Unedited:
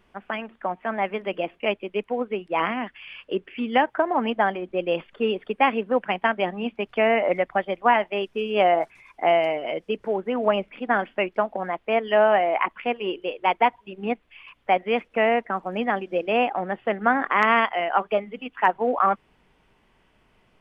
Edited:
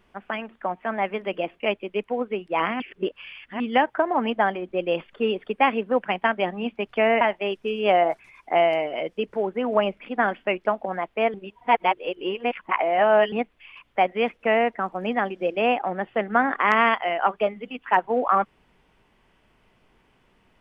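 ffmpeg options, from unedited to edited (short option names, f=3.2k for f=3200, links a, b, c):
-filter_complex "[0:a]asplit=6[a][b][c][d][e][f];[a]atrim=end=2.802[g];[b]atrim=start=2.798:end=3.602,asetpts=PTS-STARTPTS,areverse[h];[c]atrim=start=3.598:end=7.212[i];[d]atrim=start=7.918:end=12.052[j];[e]atrim=start=12.048:end=14.032,asetpts=PTS-STARTPTS,areverse[k];[f]atrim=start=14.028[l];[g][h]acrossfade=d=0.004:c1=hsin:c2=hsin[m];[m][i]acrossfade=d=0.004:c1=hsin:c2=hsin[n];[n][j]acrossfade=d=0.004:c1=hsin:c2=hsin[o];[o][k]acrossfade=d=0.004:c1=hsin:c2=hsin[p];[p][l]acrossfade=d=0.004:c1=hsin:c2=hsin"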